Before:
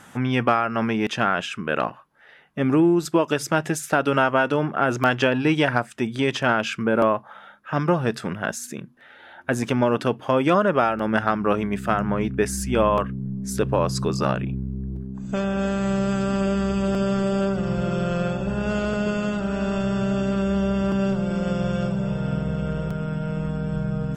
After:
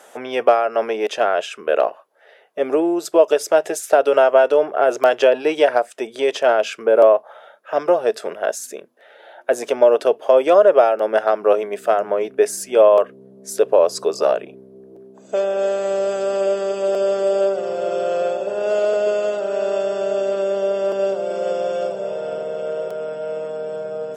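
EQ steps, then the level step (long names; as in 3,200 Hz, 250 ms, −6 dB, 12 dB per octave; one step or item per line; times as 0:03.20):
high-pass with resonance 430 Hz, resonance Q 3.6
parametric band 640 Hz +13 dB 0.63 octaves
high-shelf EQ 2,500 Hz +10 dB
−6.5 dB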